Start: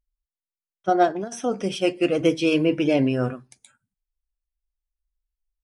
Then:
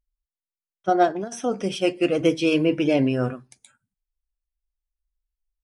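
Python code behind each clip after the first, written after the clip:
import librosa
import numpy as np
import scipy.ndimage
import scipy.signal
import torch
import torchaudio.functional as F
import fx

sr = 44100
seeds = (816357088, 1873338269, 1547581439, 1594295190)

y = x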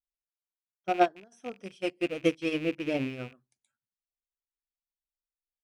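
y = fx.rattle_buzz(x, sr, strikes_db=-35.0, level_db=-18.0)
y = fx.upward_expand(y, sr, threshold_db=-28.0, expansion=2.5)
y = F.gain(torch.from_numpy(y), -3.0).numpy()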